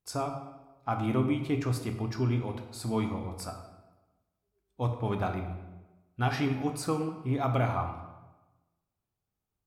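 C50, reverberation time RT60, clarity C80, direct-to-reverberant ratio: 7.5 dB, 1.1 s, 9.5 dB, 5.0 dB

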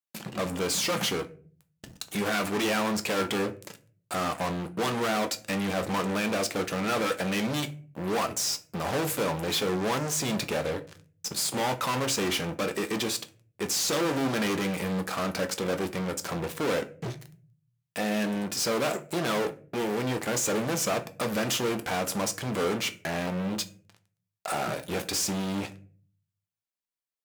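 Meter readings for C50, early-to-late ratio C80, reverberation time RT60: 16.5 dB, 22.0 dB, 0.45 s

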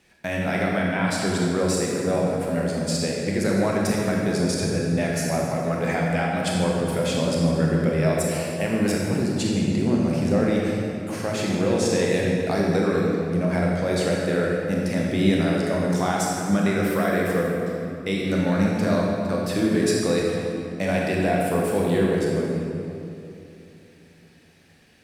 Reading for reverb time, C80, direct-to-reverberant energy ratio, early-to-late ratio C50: 2.7 s, 0.5 dB, -3.0 dB, -1.0 dB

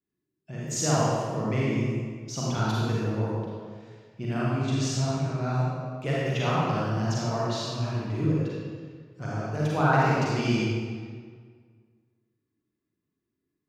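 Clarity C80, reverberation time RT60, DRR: -1.5 dB, 1.8 s, -7.0 dB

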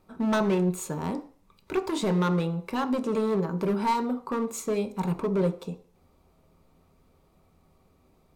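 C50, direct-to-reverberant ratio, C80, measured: 16.0 dB, 7.0 dB, 19.5 dB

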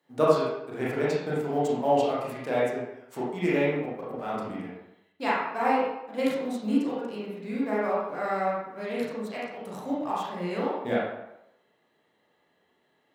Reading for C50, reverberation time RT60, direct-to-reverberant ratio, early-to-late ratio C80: -0.5 dB, 0.85 s, -7.0 dB, 3.5 dB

